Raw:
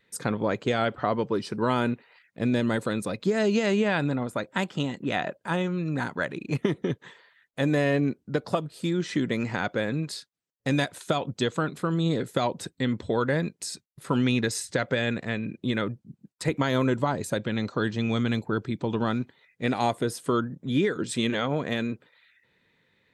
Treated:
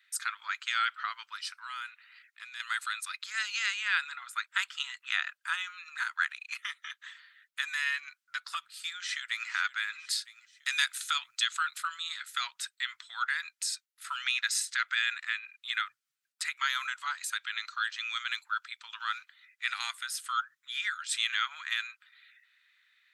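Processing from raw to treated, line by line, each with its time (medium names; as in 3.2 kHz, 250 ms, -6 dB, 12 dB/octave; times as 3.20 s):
1.50–2.60 s: compression 4:1, threshold -28 dBFS
8.80–9.49 s: echo throw 480 ms, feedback 45%, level -14 dB
10.10–11.97 s: treble shelf 4 kHz +5.5 dB
whole clip: elliptic high-pass 1.3 kHz, stop band 60 dB; trim +2.5 dB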